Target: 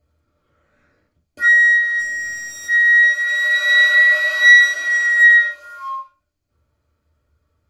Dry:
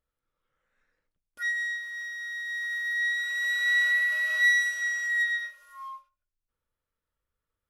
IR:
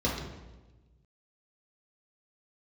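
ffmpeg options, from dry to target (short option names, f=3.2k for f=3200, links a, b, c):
-filter_complex "[0:a]asplit=3[a][b][c];[a]afade=t=out:st=1.98:d=0.02[d];[b]aeval=exprs='0.0126*(abs(mod(val(0)/0.0126+3,4)-2)-1)':c=same,afade=t=in:st=1.98:d=0.02,afade=t=out:st=2.67:d=0.02[e];[c]afade=t=in:st=2.67:d=0.02[f];[d][e][f]amix=inputs=3:normalize=0[g];[1:a]atrim=start_sample=2205,atrim=end_sample=4410,asetrate=52920,aresample=44100[h];[g][h]afir=irnorm=-1:irlink=0,volume=7dB"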